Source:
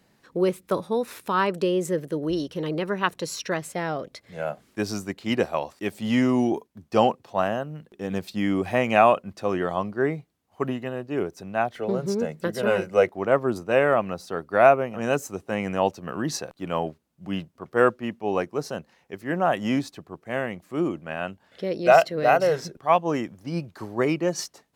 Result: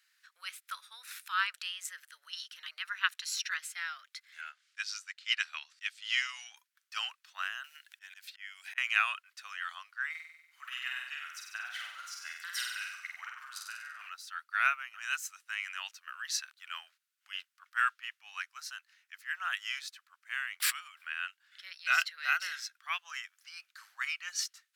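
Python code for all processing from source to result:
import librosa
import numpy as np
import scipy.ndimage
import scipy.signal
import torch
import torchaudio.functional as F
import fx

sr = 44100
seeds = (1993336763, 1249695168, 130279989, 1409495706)

y = fx.chain(x, sr, fx.lowpass(hz=5600.0, slope=12),
    fx.high_shelf(hz=2500.0, db=9.0),
    fx.upward_expand(threshold_db=-33.0, expansion=1.5), at=(4.41, 6.57))
y = fx.chain(y, sr, fx.peak_eq(hz=1200.0, db=-12.0, octaves=0.23),
    fx.auto_swell(attack_ms=315.0),
    fx.band_squash(depth_pct=100), at=(7.64, 8.78))
y = fx.chain(y, sr, fx.over_compress(threshold_db=-27.0, ratio=-0.5),
    fx.room_flutter(wall_m=8.2, rt60_s=0.92), at=(10.1, 14.09))
y = fx.chain(y, sr, fx.notch(hz=6500.0, q=5.3),
    fx.pre_swell(db_per_s=21.0), at=(20.6, 21.14))
y = scipy.signal.sosfilt(scipy.signal.ellip(4, 1.0, 80, 1400.0, 'highpass', fs=sr, output='sos'), y)
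y = fx.dynamic_eq(y, sr, hz=3200.0, q=0.96, threshold_db=-42.0, ratio=4.0, max_db=3)
y = F.gain(torch.from_numpy(y), -2.5).numpy()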